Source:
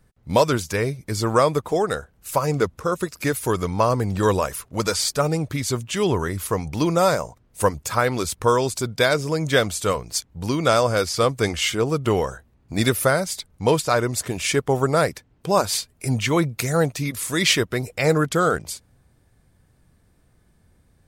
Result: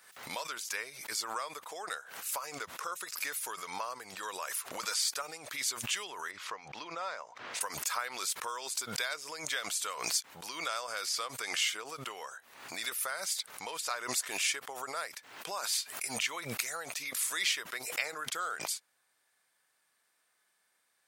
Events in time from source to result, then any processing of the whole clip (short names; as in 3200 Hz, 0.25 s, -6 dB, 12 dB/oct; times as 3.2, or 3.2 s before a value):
6.31–7.61 air absorption 170 m
whole clip: compressor, threshold -24 dBFS; HPF 1200 Hz 12 dB/oct; backwards sustainer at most 72 dB/s; gain -3 dB